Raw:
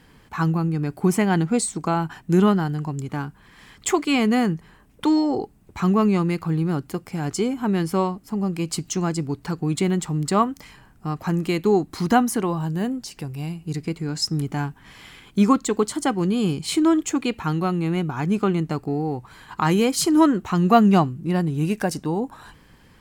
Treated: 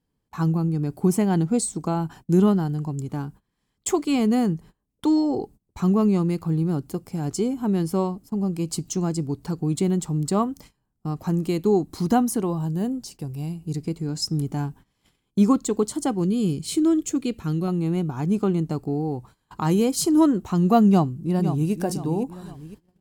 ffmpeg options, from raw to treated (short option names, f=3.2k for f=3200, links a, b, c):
-filter_complex "[0:a]asettb=1/sr,asplit=3[a][b][c];[a]atrim=end=16.244[d];[b]atrim=start=16.24:end=17.68,asetpts=PTS-STARTPTS,afade=t=in:d=0.004:c=qsin,afade=t=out:st=1.436:d=0.004:c=qsin,equalizer=f=880:t=o:w=0.75:g=-10.5[e];[c]atrim=start=17.676[f];[d][e]acrossfade=d=0.004:c1=hsin:c2=qsin[g];[g][f]acrossfade=d=0.004:c1=qsin:c2=hsin,asplit=2[h][i];[i]afade=t=in:st=20.88:d=0.01,afade=t=out:st=21.72:d=0.01,aecho=0:1:510|1020|1530|2040:0.334965|0.133986|0.0535945|0.0214378[j];[h][j]amix=inputs=2:normalize=0,agate=range=-23dB:threshold=-41dB:ratio=16:detection=peak,equalizer=f=1.9k:t=o:w=1.9:g=-11.5"